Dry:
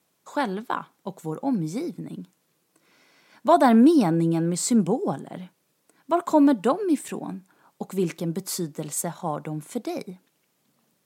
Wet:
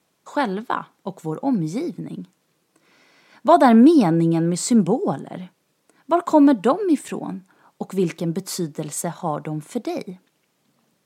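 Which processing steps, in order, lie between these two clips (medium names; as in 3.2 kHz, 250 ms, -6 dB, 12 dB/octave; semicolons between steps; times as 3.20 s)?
treble shelf 10 kHz -9.5 dB; trim +4 dB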